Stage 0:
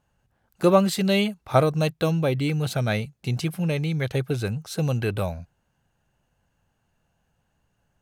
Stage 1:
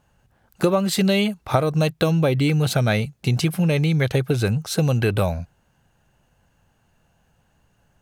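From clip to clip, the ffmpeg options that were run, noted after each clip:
ffmpeg -i in.wav -af "acompressor=threshold=-23dB:ratio=12,volume=8dB" out.wav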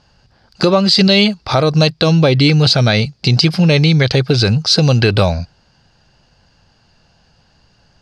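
ffmpeg -i in.wav -af "lowpass=frequency=4800:width_type=q:width=10,alimiter=level_in=9dB:limit=-1dB:release=50:level=0:latency=1,volume=-1dB" out.wav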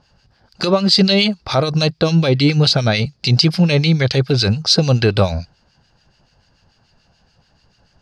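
ffmpeg -i in.wav -filter_complex "[0:a]acrossover=split=1500[link_01][link_02];[link_01]aeval=exprs='val(0)*(1-0.7/2+0.7/2*cos(2*PI*6.9*n/s))':channel_layout=same[link_03];[link_02]aeval=exprs='val(0)*(1-0.7/2-0.7/2*cos(2*PI*6.9*n/s))':channel_layout=same[link_04];[link_03][link_04]amix=inputs=2:normalize=0" out.wav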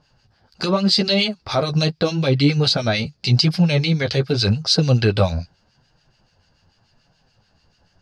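ffmpeg -i in.wav -af "flanger=delay=6.3:depth=6.8:regen=-18:speed=0.84:shape=triangular" out.wav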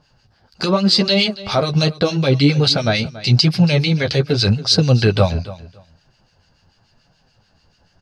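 ffmpeg -i in.wav -af "aecho=1:1:281|562:0.141|0.0268,volume=2.5dB" out.wav

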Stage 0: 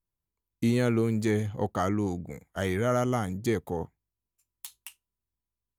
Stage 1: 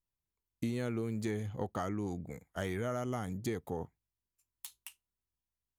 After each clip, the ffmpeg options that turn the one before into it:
ffmpeg -i in.wav -af "acompressor=threshold=-27dB:ratio=6,volume=-4.5dB" out.wav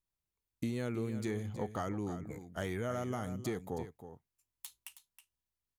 ffmpeg -i in.wav -af "aecho=1:1:320:0.266,volume=-1dB" out.wav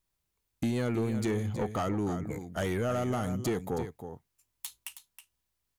ffmpeg -i in.wav -af "asoftclip=type=tanh:threshold=-31dB,volume=8.5dB" out.wav

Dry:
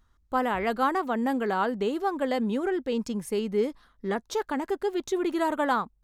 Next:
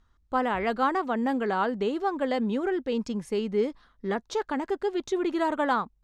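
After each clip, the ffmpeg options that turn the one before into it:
ffmpeg -i in.wav -af "lowpass=6400" out.wav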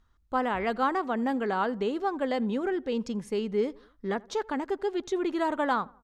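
ffmpeg -i in.wav -filter_complex "[0:a]asplit=2[link_01][link_02];[link_02]adelay=84,lowpass=frequency=1600:poles=1,volume=-23.5dB,asplit=2[link_03][link_04];[link_04]adelay=84,lowpass=frequency=1600:poles=1,volume=0.5,asplit=2[link_05][link_06];[link_06]adelay=84,lowpass=frequency=1600:poles=1,volume=0.5[link_07];[link_01][link_03][link_05][link_07]amix=inputs=4:normalize=0,volume=-1.5dB" out.wav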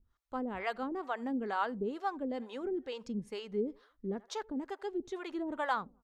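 ffmpeg -i in.wav -filter_complex "[0:a]acrossover=split=500[link_01][link_02];[link_01]aeval=exprs='val(0)*(1-1/2+1/2*cos(2*PI*2.2*n/s))':channel_layout=same[link_03];[link_02]aeval=exprs='val(0)*(1-1/2-1/2*cos(2*PI*2.2*n/s))':channel_layout=same[link_04];[link_03][link_04]amix=inputs=2:normalize=0,volume=-3dB" out.wav

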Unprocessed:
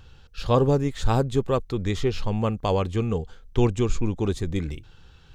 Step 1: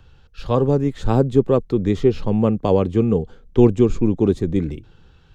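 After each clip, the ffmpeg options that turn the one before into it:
ffmpeg -i in.wav -filter_complex "[0:a]highshelf=frequency=3600:gain=-7,acrossover=split=150|510|2200[link_01][link_02][link_03][link_04];[link_02]dynaudnorm=framelen=340:gausssize=5:maxgain=12dB[link_05];[link_01][link_05][link_03][link_04]amix=inputs=4:normalize=0" out.wav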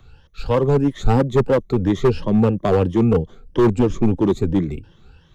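ffmpeg -i in.wav -filter_complex "[0:a]afftfilt=real='re*pow(10,12/40*sin(2*PI*(1.2*log(max(b,1)*sr/1024/100)/log(2)-(3)*(pts-256)/sr)))':imag='im*pow(10,12/40*sin(2*PI*(1.2*log(max(b,1)*sr/1024/100)/log(2)-(3)*(pts-256)/sr)))':win_size=1024:overlap=0.75,acrossover=split=120[link_01][link_02];[link_02]asoftclip=type=hard:threshold=-11.5dB[link_03];[link_01][link_03]amix=inputs=2:normalize=0" out.wav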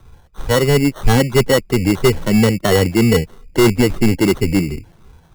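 ffmpeg -i in.wav -af "acrusher=samples=18:mix=1:aa=0.000001,volume=3dB" out.wav

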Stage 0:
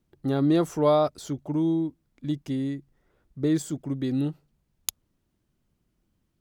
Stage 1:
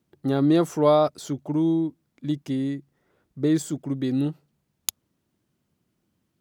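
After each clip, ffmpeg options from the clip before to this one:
ffmpeg -i in.wav -af "highpass=110,volume=2.5dB" out.wav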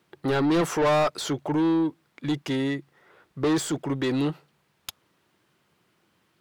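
ffmpeg -i in.wav -filter_complex "[0:a]equalizer=frequency=250:width_type=o:width=0.67:gain=-8,equalizer=frequency=630:width_type=o:width=0.67:gain=-4,equalizer=frequency=6300:width_type=o:width=0.67:gain=-3,asplit=2[link_01][link_02];[link_02]highpass=frequency=720:poles=1,volume=30dB,asoftclip=type=tanh:threshold=-7dB[link_03];[link_01][link_03]amix=inputs=2:normalize=0,lowpass=frequency=2800:poles=1,volume=-6dB,volume=-7dB" out.wav

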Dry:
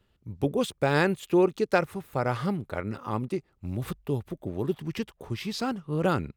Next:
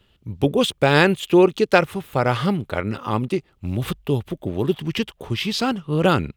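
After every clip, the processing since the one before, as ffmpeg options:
ffmpeg -i in.wav -af "equalizer=frequency=3100:width=2:gain=8,volume=7.5dB" out.wav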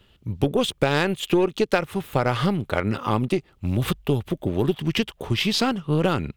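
ffmpeg -i in.wav -af "aeval=exprs='0.891*(cos(1*acos(clip(val(0)/0.891,-1,1)))-cos(1*PI/2))+0.0708*(cos(3*acos(clip(val(0)/0.891,-1,1)))-cos(3*PI/2))+0.02*(cos(8*acos(clip(val(0)/0.891,-1,1)))-cos(8*PI/2))':channel_layout=same,acompressor=threshold=-22dB:ratio=6,volume=5dB" out.wav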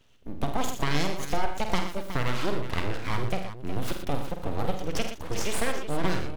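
ffmpeg -i in.wav -af "aeval=exprs='abs(val(0))':channel_layout=same,aecho=1:1:49|81|119|366:0.422|0.266|0.316|0.266,volume=-5dB" out.wav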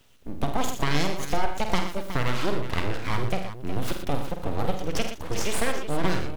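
ffmpeg -i in.wav -af "acrusher=bits=10:mix=0:aa=0.000001,volume=2dB" out.wav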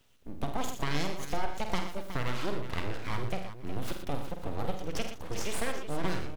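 ffmpeg -i in.wav -af "aecho=1:1:536:0.0891,volume=-7dB" out.wav

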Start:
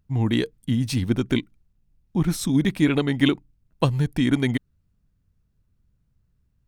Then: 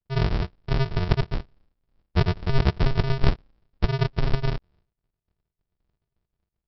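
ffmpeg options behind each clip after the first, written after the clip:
ffmpeg -i in.wav -af "aresample=11025,acrusher=samples=41:mix=1:aa=0.000001,aresample=44100,agate=range=-33dB:threshold=-55dB:ratio=3:detection=peak" out.wav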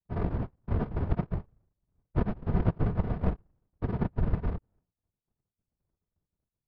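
ffmpeg -i in.wav -af "lowpass=1200,afftfilt=real='hypot(re,im)*cos(2*PI*random(0))':imag='hypot(re,im)*sin(2*PI*random(1))':win_size=512:overlap=0.75" out.wav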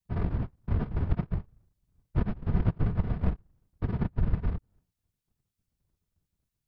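ffmpeg -i in.wav -filter_complex "[0:a]asplit=2[link_01][link_02];[link_02]acompressor=threshold=-37dB:ratio=6,volume=1dB[link_03];[link_01][link_03]amix=inputs=2:normalize=0,equalizer=frequency=580:width_type=o:width=2.5:gain=-7" out.wav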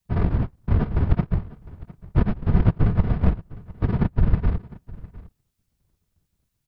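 ffmpeg -i in.wav -af "aecho=1:1:706:0.1,volume=8dB" out.wav

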